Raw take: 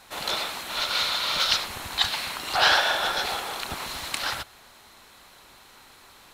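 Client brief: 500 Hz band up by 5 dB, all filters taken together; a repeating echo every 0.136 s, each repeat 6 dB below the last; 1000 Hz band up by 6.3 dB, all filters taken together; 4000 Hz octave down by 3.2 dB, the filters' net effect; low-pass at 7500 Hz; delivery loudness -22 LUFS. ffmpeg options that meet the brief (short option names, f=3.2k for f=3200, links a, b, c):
-af "lowpass=7.5k,equalizer=f=500:t=o:g=3.5,equalizer=f=1k:t=o:g=7.5,equalizer=f=4k:t=o:g=-4,aecho=1:1:136|272|408|544|680|816:0.501|0.251|0.125|0.0626|0.0313|0.0157,volume=0.5dB"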